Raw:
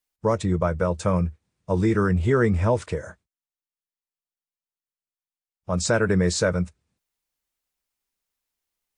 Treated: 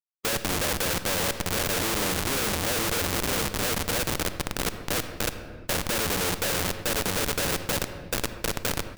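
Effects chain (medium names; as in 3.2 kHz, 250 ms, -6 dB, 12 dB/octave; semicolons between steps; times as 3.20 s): median filter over 41 samples; low-pass 2.8 kHz 6 dB/octave; high-order bell 510 Hz +12 dB 1.3 oct; hum notches 60/120/180/240/300/360/420/480/540 Hz; comb 3.8 ms, depth 80%; shuffle delay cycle 1270 ms, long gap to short 3:1, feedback 46%, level -9.5 dB; Schmitt trigger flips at -24 dBFS; in parallel at -10 dB: decimation with a swept rate 33×, swing 100% 1.4 Hz; on the sum: simulated room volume 1200 m³, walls mixed, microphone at 0.33 m; spectrum-flattening compressor 2:1; trim -1.5 dB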